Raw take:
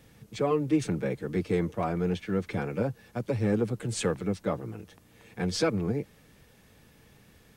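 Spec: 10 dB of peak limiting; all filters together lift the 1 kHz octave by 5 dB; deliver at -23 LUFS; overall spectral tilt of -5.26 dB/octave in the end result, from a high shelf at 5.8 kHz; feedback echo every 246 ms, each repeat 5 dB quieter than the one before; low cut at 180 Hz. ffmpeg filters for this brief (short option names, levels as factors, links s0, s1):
-af "highpass=180,equalizer=f=1000:t=o:g=7,highshelf=f=5800:g=-4,alimiter=limit=0.0668:level=0:latency=1,aecho=1:1:246|492|738|984|1230|1476|1722:0.562|0.315|0.176|0.0988|0.0553|0.031|0.0173,volume=3.35"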